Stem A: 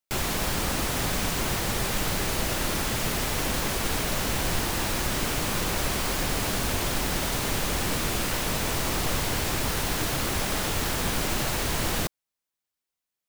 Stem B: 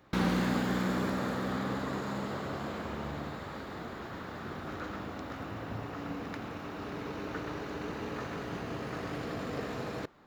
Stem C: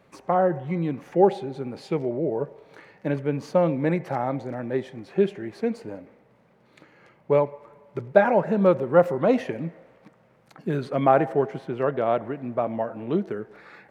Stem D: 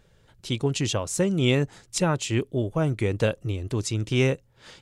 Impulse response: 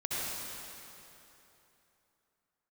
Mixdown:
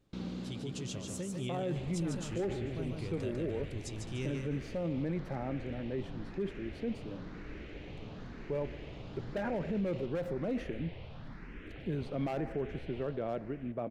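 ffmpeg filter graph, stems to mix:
-filter_complex "[0:a]lowpass=frequency=2600:width=0.5412,lowpass=frequency=2600:width=1.3066,asplit=2[link_01][link_02];[link_02]afreqshift=0.99[link_03];[link_01][link_03]amix=inputs=2:normalize=1,adelay=1650,volume=-13dB,afade=type=out:start_time=12.97:duration=0.25:silence=0.398107,asplit=2[link_04][link_05];[link_05]volume=-14.5dB[link_06];[1:a]lowpass=5200,equalizer=frequency=1800:width=2.1:gain=-9.5,volume=-9.5dB[link_07];[2:a]volume=13dB,asoftclip=hard,volume=-13dB,highshelf=frequency=3800:gain=-7,adelay=1200,volume=-5.5dB[link_08];[3:a]volume=-15dB,asplit=3[link_09][link_10][link_11];[link_10]volume=-4dB[link_12];[link_11]apad=whole_len=452607[link_13];[link_07][link_13]sidechaincompress=threshold=-41dB:ratio=8:attack=25:release=122[link_14];[link_06][link_12]amix=inputs=2:normalize=0,aecho=0:1:148|296|444|592|740:1|0.33|0.109|0.0359|0.0119[link_15];[link_04][link_14][link_08][link_09][link_15]amix=inputs=5:normalize=0,equalizer=frequency=1000:width=0.82:gain=-11,alimiter=level_in=3dB:limit=-24dB:level=0:latency=1:release=13,volume=-3dB"

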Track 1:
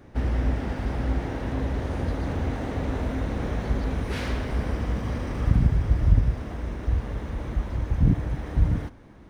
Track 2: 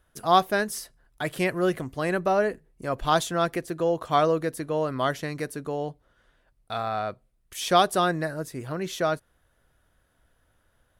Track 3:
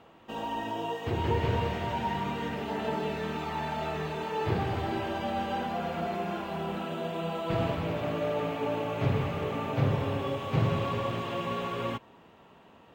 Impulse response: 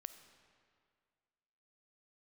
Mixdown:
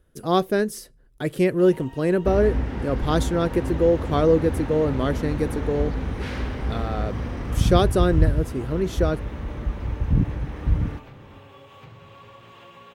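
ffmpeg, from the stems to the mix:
-filter_complex "[0:a]highshelf=frequency=5000:gain=-6.5,adelay=2100,volume=0dB[link_01];[1:a]lowshelf=frequency=640:width_type=q:width=1.5:gain=8.5,volume=-2.5dB[link_02];[2:a]equalizer=frequency=220:width=0.56:gain=-8.5,acompressor=threshold=-40dB:ratio=5,adelay=1300,volume=-3.5dB[link_03];[link_01][link_02][link_03]amix=inputs=3:normalize=0,equalizer=frequency=660:width_type=o:width=0.34:gain=-5"

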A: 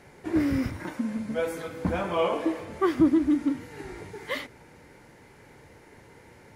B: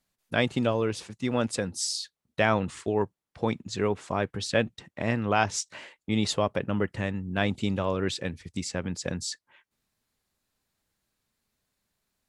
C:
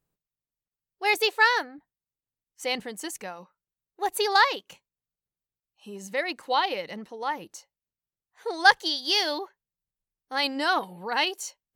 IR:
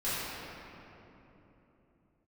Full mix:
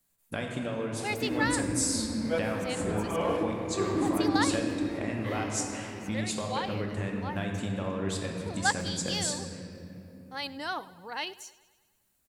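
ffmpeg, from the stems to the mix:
-filter_complex "[0:a]adelay=950,volume=-1.5dB,asplit=2[link_01][link_02];[link_02]volume=-14.5dB[link_03];[1:a]acompressor=threshold=-30dB:ratio=6,aexciter=amount=2.9:drive=6.4:freq=7100,volume=-4dB,asplit=3[link_04][link_05][link_06];[link_05]volume=-6.5dB[link_07];[2:a]volume=-10dB,asplit=2[link_08][link_09];[link_09]volume=-20dB[link_10];[link_06]apad=whole_len=330863[link_11];[link_01][link_11]sidechaincompress=threshold=-53dB:ratio=8:attack=16:release=224[link_12];[3:a]atrim=start_sample=2205[link_13];[link_03][link_07]amix=inputs=2:normalize=0[link_14];[link_14][link_13]afir=irnorm=-1:irlink=0[link_15];[link_10]aecho=0:1:102|204|306|408|510|612|714|816|918:1|0.59|0.348|0.205|0.121|0.0715|0.0422|0.0249|0.0147[link_16];[link_12][link_04][link_08][link_15][link_16]amix=inputs=5:normalize=0"

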